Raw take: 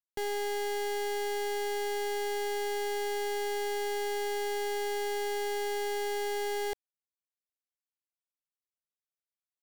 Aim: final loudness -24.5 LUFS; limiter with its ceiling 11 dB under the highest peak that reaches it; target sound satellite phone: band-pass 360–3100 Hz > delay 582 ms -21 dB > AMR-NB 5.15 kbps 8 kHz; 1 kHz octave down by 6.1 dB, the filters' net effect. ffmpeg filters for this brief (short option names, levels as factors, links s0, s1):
-af "equalizer=f=1000:t=o:g=-8,alimiter=level_in=8.41:limit=0.0631:level=0:latency=1,volume=0.119,highpass=360,lowpass=3100,aecho=1:1:582:0.0891,volume=15.8" -ar 8000 -c:a libopencore_amrnb -b:a 5150